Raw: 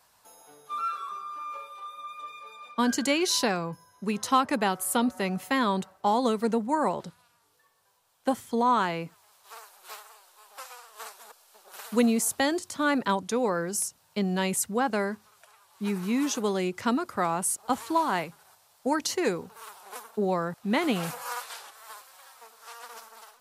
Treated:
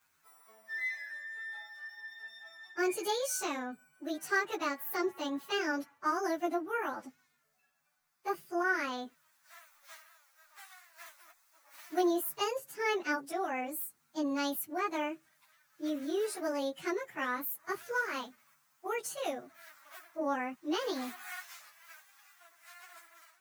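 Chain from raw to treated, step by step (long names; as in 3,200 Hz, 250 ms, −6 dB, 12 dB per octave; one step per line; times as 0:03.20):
phase-vocoder pitch shift without resampling +7 semitones
level −5 dB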